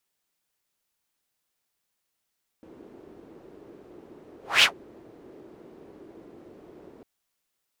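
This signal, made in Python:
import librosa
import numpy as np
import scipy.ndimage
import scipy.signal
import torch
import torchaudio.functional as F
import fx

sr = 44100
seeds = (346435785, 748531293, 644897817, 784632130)

y = fx.whoosh(sr, seeds[0], length_s=4.4, peak_s=2.0, rise_s=0.22, fall_s=0.11, ends_hz=360.0, peak_hz=3000.0, q=2.7, swell_db=33)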